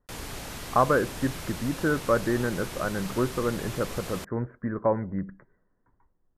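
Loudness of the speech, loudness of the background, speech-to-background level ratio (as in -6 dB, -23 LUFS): -28.5 LUFS, -38.0 LUFS, 9.5 dB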